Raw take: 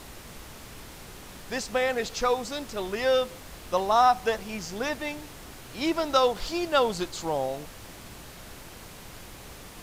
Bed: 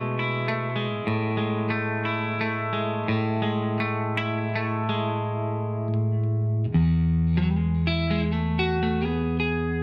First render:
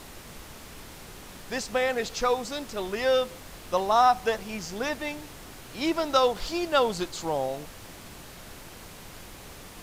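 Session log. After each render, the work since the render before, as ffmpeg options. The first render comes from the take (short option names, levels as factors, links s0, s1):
-af "bandreject=f=60:t=h:w=4,bandreject=f=120:t=h:w=4"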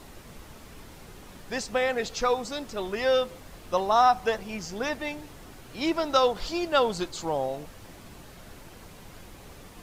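-af "afftdn=nr=6:nf=-46"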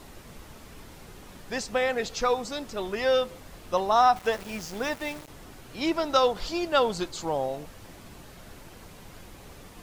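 -filter_complex "[0:a]asettb=1/sr,asplit=3[s0][s1][s2];[s0]atrim=end=4.164[s3];[s1]atrim=start=4.16:end=5.28,asetpts=PTS-STARTPTS,afade=t=in:d=0.004:c=qsin,afade=t=out:st=1.116:d=0.004:c=qsin,aeval=exprs='val(0)*gte(abs(val(0)),0.0119)':c=same[s4];[s2]atrim=start=5.276[s5];[s3][s4]acrossfade=d=0.004:c1=hsin:c2=qsin[s6];[s6][s5]acrossfade=d=0.004:c1=qsin:c2=hsin"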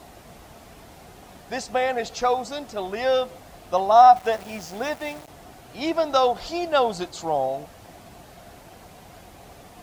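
-af "highpass=43,equalizer=f=710:t=o:w=0.38:g=11"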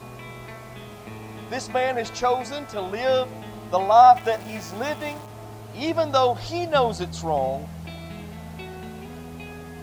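-filter_complex "[1:a]volume=0.211[s0];[0:a][s0]amix=inputs=2:normalize=0"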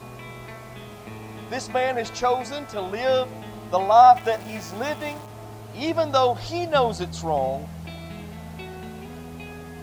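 -af anull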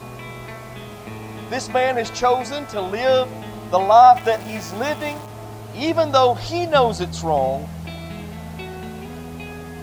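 -af "volume=1.68,alimiter=limit=0.794:level=0:latency=1"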